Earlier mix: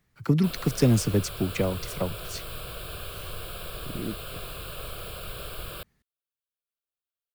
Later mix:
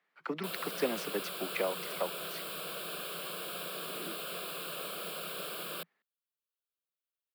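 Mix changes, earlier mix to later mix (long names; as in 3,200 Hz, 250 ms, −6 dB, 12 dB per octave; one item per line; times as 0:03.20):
speech: add three-way crossover with the lows and the highs turned down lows −22 dB, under 450 Hz, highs −21 dB, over 3,500 Hz
master: add Chebyshev high-pass filter 170 Hz, order 5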